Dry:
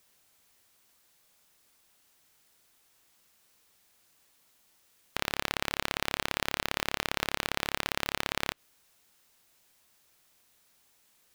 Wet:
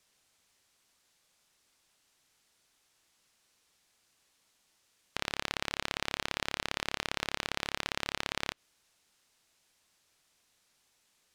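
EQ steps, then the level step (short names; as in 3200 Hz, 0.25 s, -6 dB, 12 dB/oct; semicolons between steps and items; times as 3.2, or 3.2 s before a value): air absorption 81 m; high shelf 4100 Hz +8.5 dB; bell 14000 Hz +6 dB 0.8 oct; -4.0 dB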